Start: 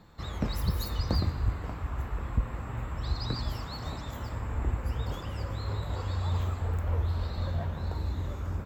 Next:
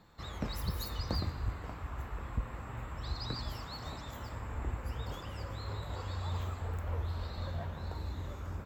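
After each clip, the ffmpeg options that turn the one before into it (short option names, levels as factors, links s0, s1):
-af "lowshelf=f=420:g=-4.5,volume=0.708"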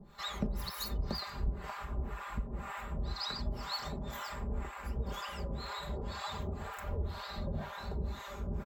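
-filter_complex "[0:a]aecho=1:1:5:0.83,acompressor=threshold=0.0112:ratio=2,acrossover=split=650[s0][s1];[s0]aeval=exprs='val(0)*(1-1/2+1/2*cos(2*PI*2*n/s))':c=same[s2];[s1]aeval=exprs='val(0)*(1-1/2-1/2*cos(2*PI*2*n/s))':c=same[s3];[s2][s3]amix=inputs=2:normalize=0,volume=2.37"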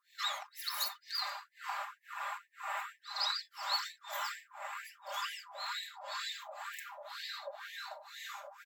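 -af "afftfilt=real='re*gte(b*sr/1024,520*pow(1700/520,0.5+0.5*sin(2*PI*2.1*pts/sr)))':imag='im*gte(b*sr/1024,520*pow(1700/520,0.5+0.5*sin(2*PI*2.1*pts/sr)))':win_size=1024:overlap=0.75,volume=1.68"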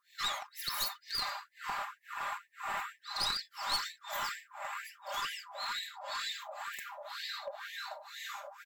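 -af "aeval=exprs='clip(val(0),-1,0.0178)':c=same,volume=1.33"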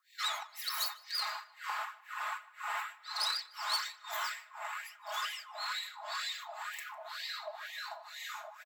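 -filter_complex "[0:a]highpass=f=500:w=0.5412,highpass=f=500:w=1.3066,asplit=2[s0][s1];[s1]adelay=152,lowpass=f=4100:p=1,volume=0.1,asplit=2[s2][s3];[s3]adelay=152,lowpass=f=4100:p=1,volume=0.4,asplit=2[s4][s5];[s5]adelay=152,lowpass=f=4100:p=1,volume=0.4[s6];[s0][s2][s4][s6]amix=inputs=4:normalize=0,afreqshift=55"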